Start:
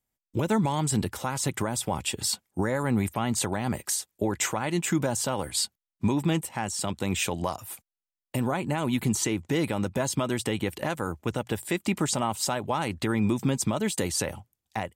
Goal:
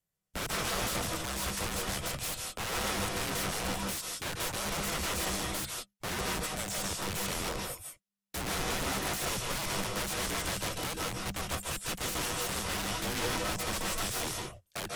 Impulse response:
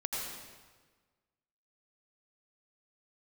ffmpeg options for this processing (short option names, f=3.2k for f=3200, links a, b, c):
-filter_complex "[0:a]aeval=exprs='(mod(23.7*val(0)+1,2)-1)/23.7':c=same,acrusher=bits=5:mode=log:mix=0:aa=0.000001,afreqshift=-200[a];[1:a]atrim=start_sample=2205,afade=t=out:st=0.15:d=0.01,atrim=end_sample=7056,asetrate=25137,aresample=44100[b];[a][b]afir=irnorm=-1:irlink=0,volume=-4.5dB"